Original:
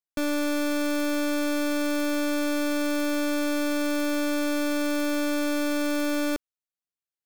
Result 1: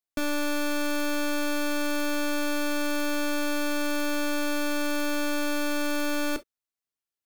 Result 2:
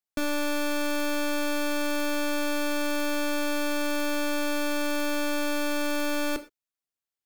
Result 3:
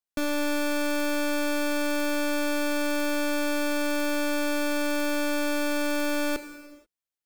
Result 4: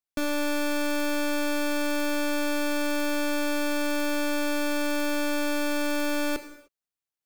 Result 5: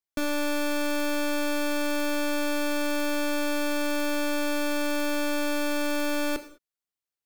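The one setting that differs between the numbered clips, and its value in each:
gated-style reverb, gate: 80 ms, 140 ms, 510 ms, 330 ms, 230 ms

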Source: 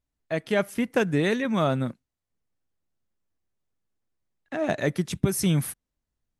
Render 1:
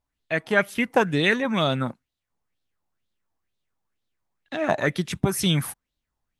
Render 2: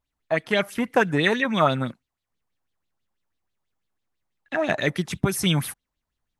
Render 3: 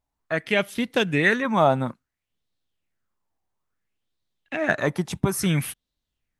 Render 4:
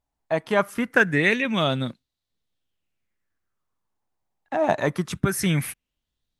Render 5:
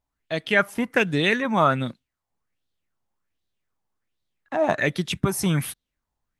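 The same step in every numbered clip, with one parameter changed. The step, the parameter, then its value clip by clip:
sweeping bell, rate: 2.1 Hz, 6.1 Hz, 0.59 Hz, 0.23 Hz, 1.3 Hz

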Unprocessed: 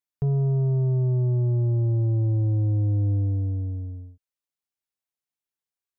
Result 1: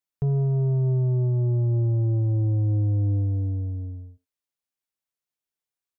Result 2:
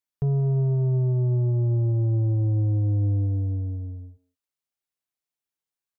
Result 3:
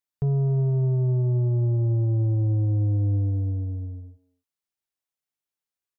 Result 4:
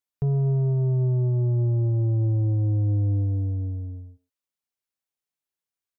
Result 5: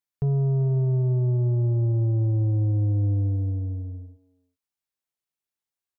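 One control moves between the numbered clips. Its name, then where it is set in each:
speakerphone echo, time: 80 ms, 180 ms, 260 ms, 120 ms, 390 ms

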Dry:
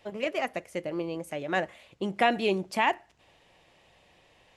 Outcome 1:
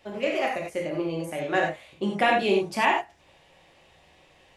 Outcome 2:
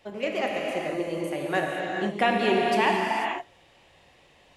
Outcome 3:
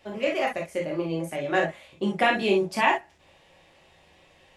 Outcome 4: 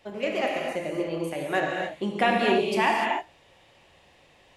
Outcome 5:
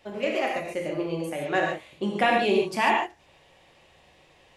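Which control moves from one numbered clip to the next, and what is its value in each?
gated-style reverb, gate: 120 ms, 520 ms, 80 ms, 320 ms, 170 ms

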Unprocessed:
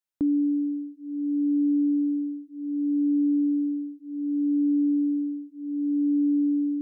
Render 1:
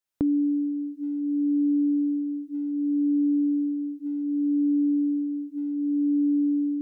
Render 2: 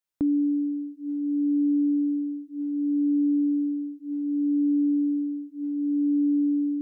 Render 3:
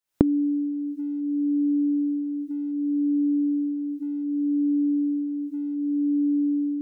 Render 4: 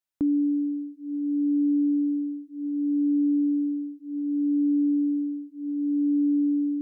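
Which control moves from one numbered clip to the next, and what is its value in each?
recorder AGC, rising by: 36 dB/s, 14 dB/s, 90 dB/s, 5.1 dB/s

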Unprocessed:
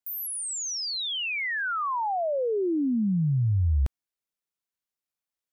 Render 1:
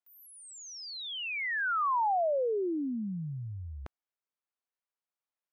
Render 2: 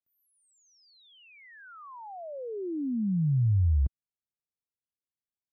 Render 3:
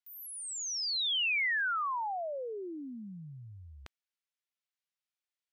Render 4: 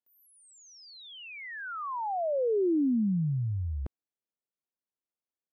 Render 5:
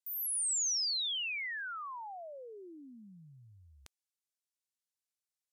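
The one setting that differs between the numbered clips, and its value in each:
band-pass filter, frequency: 940 Hz, 100 Hz, 2.7 kHz, 350 Hz, 7.4 kHz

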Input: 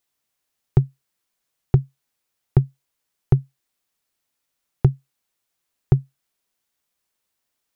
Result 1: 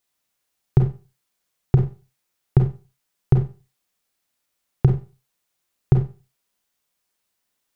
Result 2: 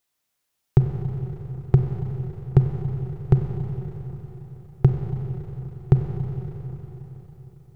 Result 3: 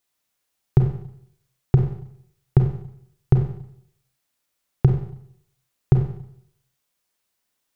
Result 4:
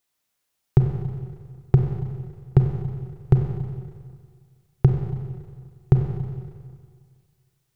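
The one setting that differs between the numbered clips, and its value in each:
Schroeder reverb, RT60: 0.32 s, 4.3 s, 0.69 s, 1.9 s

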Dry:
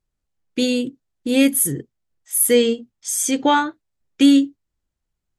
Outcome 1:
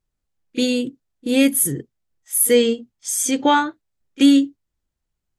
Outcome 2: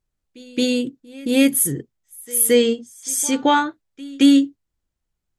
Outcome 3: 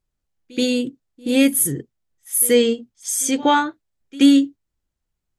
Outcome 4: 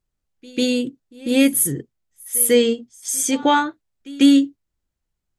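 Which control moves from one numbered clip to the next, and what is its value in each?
pre-echo, time: 31 ms, 221 ms, 78 ms, 146 ms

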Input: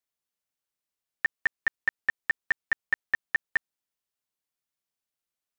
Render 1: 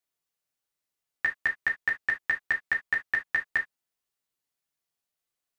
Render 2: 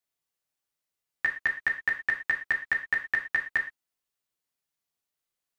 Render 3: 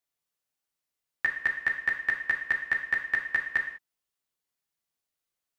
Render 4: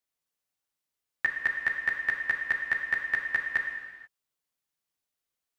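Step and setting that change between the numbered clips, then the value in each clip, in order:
gated-style reverb, gate: 90 ms, 140 ms, 220 ms, 510 ms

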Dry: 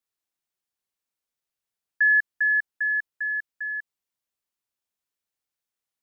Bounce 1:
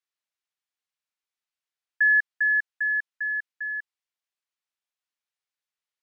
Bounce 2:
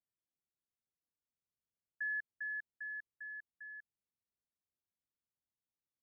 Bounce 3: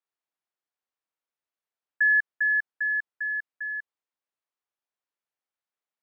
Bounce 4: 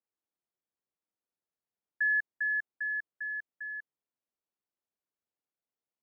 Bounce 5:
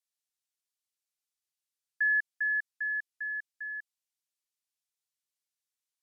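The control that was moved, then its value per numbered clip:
band-pass filter, frequency: 2.3 kHz, 100 Hz, 900 Hz, 340 Hz, 6.9 kHz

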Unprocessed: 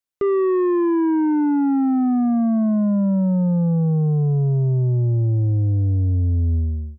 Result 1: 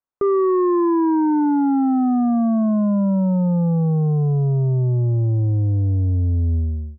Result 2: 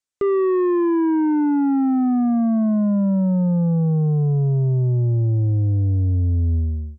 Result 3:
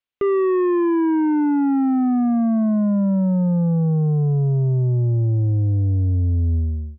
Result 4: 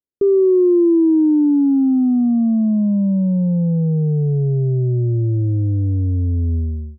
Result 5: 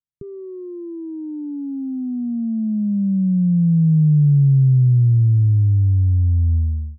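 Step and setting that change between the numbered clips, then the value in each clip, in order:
resonant low-pass, frequency: 1.1 kHz, 7.7 kHz, 3 kHz, 390 Hz, 150 Hz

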